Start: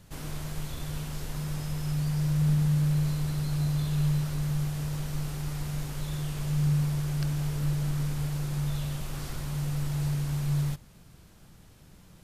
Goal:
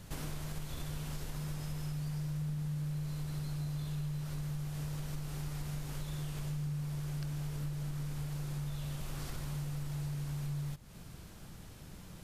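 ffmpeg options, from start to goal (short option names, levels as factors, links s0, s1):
-af "acompressor=threshold=0.01:ratio=6,volume=1.5"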